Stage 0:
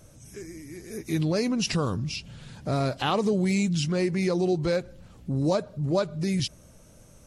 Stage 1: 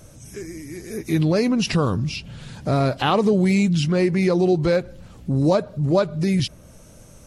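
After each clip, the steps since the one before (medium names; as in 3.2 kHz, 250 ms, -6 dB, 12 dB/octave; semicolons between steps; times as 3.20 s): dynamic bell 7.1 kHz, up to -7 dB, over -50 dBFS, Q 0.81; trim +6.5 dB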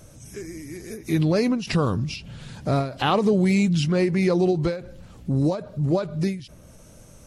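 endings held to a fixed fall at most 120 dB/s; trim -1.5 dB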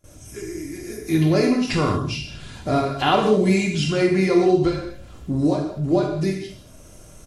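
gate with hold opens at -39 dBFS; comb 2.9 ms, depth 45%; gated-style reverb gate 260 ms falling, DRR -0.5 dB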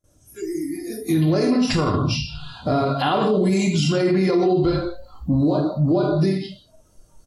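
spectral noise reduction 19 dB; peaking EQ 2.3 kHz -7.5 dB 0.65 oct; peak limiter -17.5 dBFS, peak gain reduction 10.5 dB; trim +6 dB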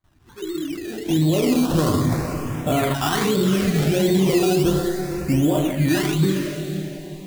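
decimation with a swept rate 16×, swing 60% 1.4 Hz; echo that smears into a reverb 455 ms, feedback 41%, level -8 dB; LFO notch saw up 0.34 Hz 470–5800 Hz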